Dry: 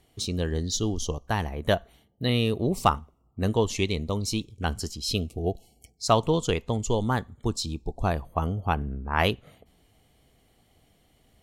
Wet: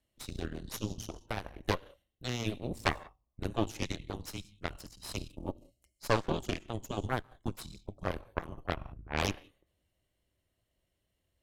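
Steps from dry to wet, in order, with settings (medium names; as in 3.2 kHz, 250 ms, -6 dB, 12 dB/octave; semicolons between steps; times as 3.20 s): gated-style reverb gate 210 ms flat, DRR 11.5 dB; frequency shift -120 Hz; Chebyshev shaper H 3 -9 dB, 5 -21 dB, 6 -11 dB, 7 -42 dB, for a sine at -3.5 dBFS; trim -7.5 dB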